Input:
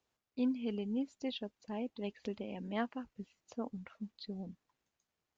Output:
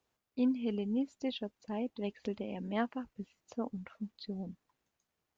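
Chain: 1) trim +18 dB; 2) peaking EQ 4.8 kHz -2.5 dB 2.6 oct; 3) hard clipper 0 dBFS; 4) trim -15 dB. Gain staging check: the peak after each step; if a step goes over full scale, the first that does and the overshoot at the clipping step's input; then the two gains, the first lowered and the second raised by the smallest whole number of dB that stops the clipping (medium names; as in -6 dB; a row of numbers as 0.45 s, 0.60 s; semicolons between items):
-5.0 dBFS, -5.5 dBFS, -5.5 dBFS, -20.5 dBFS; nothing clips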